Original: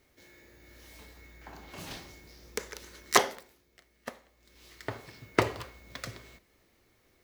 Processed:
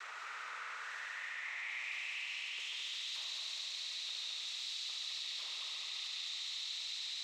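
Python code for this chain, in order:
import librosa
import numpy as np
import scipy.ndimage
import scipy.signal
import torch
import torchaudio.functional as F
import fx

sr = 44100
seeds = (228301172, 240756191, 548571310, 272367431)

p1 = x + 0.5 * 10.0 ** (-16.0 / 20.0) * np.diff(np.sign(x), prepend=np.sign(x[:1]))
p2 = scipy.signal.sosfilt(scipy.signal.butter(2, 310.0, 'highpass', fs=sr, output='sos'), p1)
p3 = fx.peak_eq(p2, sr, hz=970.0, db=9.5, octaves=0.21)
p4 = fx.quant_dither(p3, sr, seeds[0], bits=6, dither='none')
p5 = fx.small_body(p4, sr, hz=(630.0, 1000.0, 2600.0), ring_ms=20, db=16)
p6 = fx.noise_vocoder(p5, sr, seeds[1], bands=12)
p7 = fx.clip_asym(p6, sr, top_db=-32.0, bottom_db=-23.5)
p8 = fx.filter_sweep_bandpass(p7, sr, from_hz=1400.0, to_hz=3900.0, start_s=0.51, end_s=3.13, q=5.5)
p9 = p8 + fx.echo_heads(p8, sr, ms=71, heads='all three', feedback_pct=74, wet_db=-8.0, dry=0)
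p10 = fx.env_flatten(p9, sr, amount_pct=50)
y = F.gain(torch.from_numpy(p10), -6.5).numpy()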